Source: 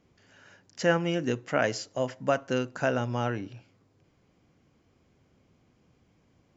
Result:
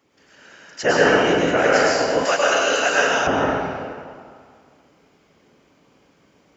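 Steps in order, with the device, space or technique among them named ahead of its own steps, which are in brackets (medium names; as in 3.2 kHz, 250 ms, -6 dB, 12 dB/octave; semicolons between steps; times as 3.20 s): whispering ghost (whisper effect; high-pass 400 Hz 6 dB/octave; reverberation RT60 2.1 s, pre-delay 96 ms, DRR -6 dB); 2.25–3.27 s: tilt EQ +4 dB/octave; trim +6 dB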